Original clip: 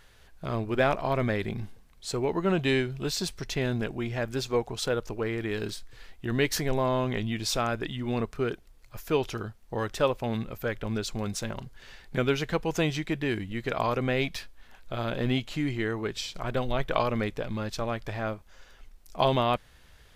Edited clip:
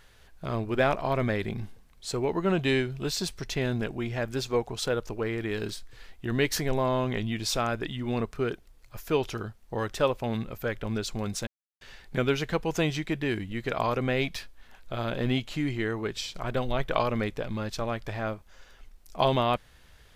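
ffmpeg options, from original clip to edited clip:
-filter_complex "[0:a]asplit=3[s0][s1][s2];[s0]atrim=end=11.47,asetpts=PTS-STARTPTS,afade=t=out:st=11.466:d=0.004:c=hsin[s3];[s1]atrim=start=11.47:end=11.81,asetpts=PTS-STARTPTS,volume=0[s4];[s2]atrim=start=11.81,asetpts=PTS-STARTPTS,afade=t=in:d=0.004:c=hsin[s5];[s3][s4][s5]concat=n=3:v=0:a=1"

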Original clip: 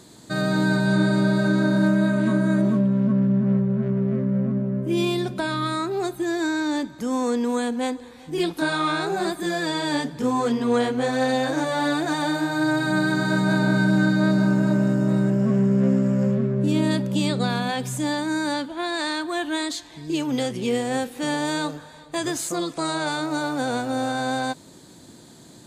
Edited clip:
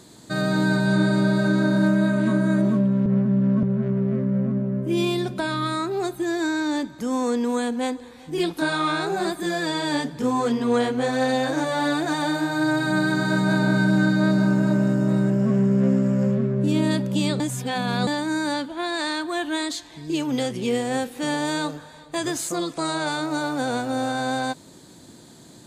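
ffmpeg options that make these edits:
-filter_complex "[0:a]asplit=5[s0][s1][s2][s3][s4];[s0]atrim=end=3.062[s5];[s1]atrim=start=3.058:end=3.632,asetpts=PTS-STARTPTS,areverse[s6];[s2]atrim=start=3.628:end=17.402[s7];[s3]atrim=start=17.398:end=18.072,asetpts=PTS-STARTPTS,areverse[s8];[s4]atrim=start=18.068[s9];[s5][s6]acrossfade=d=0.004:c1=hsin:c2=hsin[s10];[s10][s7]acrossfade=d=0.004:c1=hsin:c2=hsin[s11];[s11][s8]acrossfade=d=0.004:c1=hsin:c2=hsin[s12];[s12][s9]acrossfade=d=0.004:c1=hsin:c2=hsin"

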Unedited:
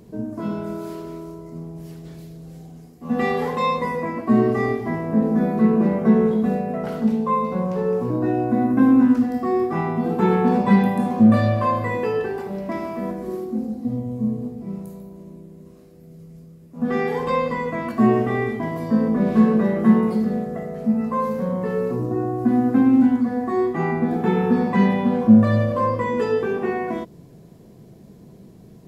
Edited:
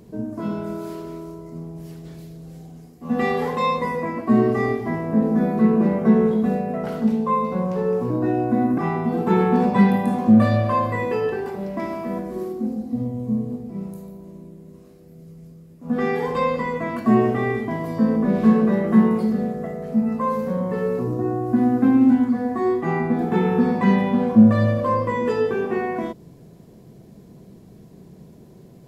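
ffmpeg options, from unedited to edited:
-filter_complex "[0:a]asplit=2[s0][s1];[s0]atrim=end=8.782[s2];[s1]atrim=start=9.698[s3];[s2][s3]acrossfade=d=0.004:c1=hsin:c2=hsin"

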